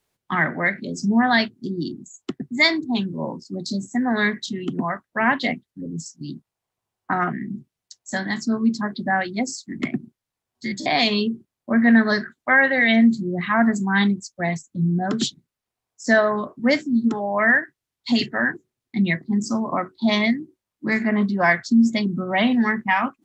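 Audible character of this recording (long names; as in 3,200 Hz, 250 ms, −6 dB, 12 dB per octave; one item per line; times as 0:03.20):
background noise floor −86 dBFS
spectral slope −5.0 dB per octave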